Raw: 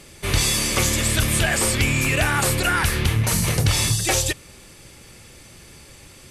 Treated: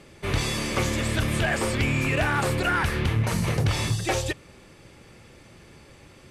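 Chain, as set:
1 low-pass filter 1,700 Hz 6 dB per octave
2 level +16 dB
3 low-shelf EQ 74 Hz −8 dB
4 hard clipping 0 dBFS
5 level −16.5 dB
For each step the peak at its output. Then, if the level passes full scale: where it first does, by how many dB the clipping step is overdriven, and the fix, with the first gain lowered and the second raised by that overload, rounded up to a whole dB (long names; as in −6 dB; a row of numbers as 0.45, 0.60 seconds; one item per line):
−8.5, +7.5, +5.5, 0.0, −16.5 dBFS
step 2, 5.5 dB
step 2 +10 dB, step 5 −10.5 dB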